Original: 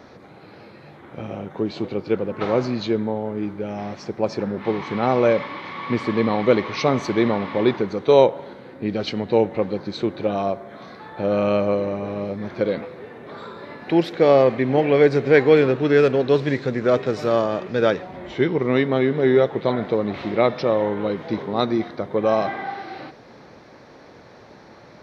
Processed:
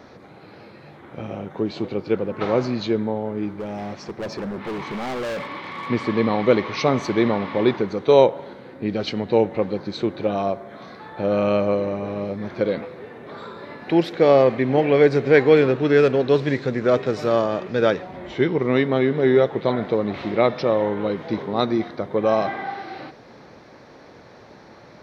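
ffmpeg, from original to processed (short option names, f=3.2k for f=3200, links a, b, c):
-filter_complex "[0:a]asettb=1/sr,asplit=3[a][b][c];[a]atrim=end=3.564[d];[b]atrim=start=3.56:end=5.88,asetpts=PTS-STARTPTS,afade=t=in:d=0.004:c=qsin,afade=t=out:st=2.316:d=0.004:c=qsin,volume=25.5dB,asoftclip=hard,volume=-25.5dB[e];[c]atrim=start=5.876[f];[d][e]acrossfade=d=0.004:c1=hsin:c2=qsin[g];[g][f]acrossfade=d=0.004:c1=qsin:c2=hsin"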